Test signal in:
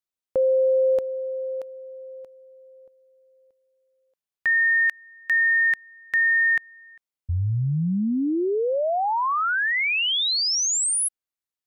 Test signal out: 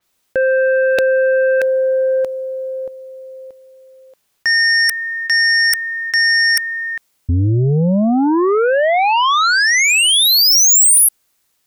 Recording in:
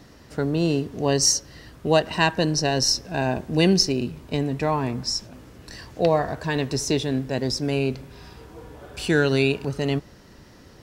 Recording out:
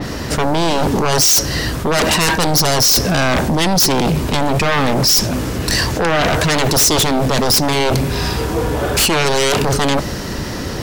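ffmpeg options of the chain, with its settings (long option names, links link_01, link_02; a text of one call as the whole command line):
ffmpeg -i in.wav -af "areverse,acompressor=threshold=-32dB:ratio=16:attack=20:release=84:knee=1:detection=peak,areverse,aeval=exprs='0.158*sin(PI/2*7.08*val(0)/0.158)':channel_layout=same,adynamicequalizer=threshold=0.0178:dfrequency=4500:dqfactor=0.7:tfrequency=4500:tqfactor=0.7:attack=5:release=100:ratio=0.375:range=2:mode=boostabove:tftype=highshelf,volume=4.5dB" out.wav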